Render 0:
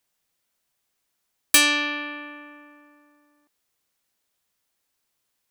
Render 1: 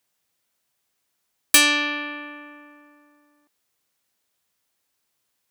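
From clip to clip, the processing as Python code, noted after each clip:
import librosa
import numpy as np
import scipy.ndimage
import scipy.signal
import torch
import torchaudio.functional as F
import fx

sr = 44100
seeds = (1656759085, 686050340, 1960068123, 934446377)

y = scipy.signal.sosfilt(scipy.signal.butter(2, 53.0, 'highpass', fs=sr, output='sos'), x)
y = F.gain(torch.from_numpy(y), 1.5).numpy()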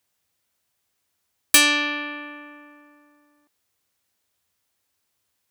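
y = fx.peak_eq(x, sr, hz=84.0, db=10.0, octaves=0.53)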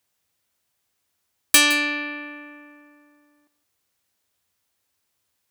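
y = x + 10.0 ** (-15.5 / 20.0) * np.pad(x, (int(163 * sr / 1000.0), 0))[:len(x)]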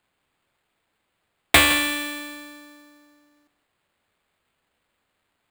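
y = fx.sample_hold(x, sr, seeds[0], rate_hz=5800.0, jitter_pct=0)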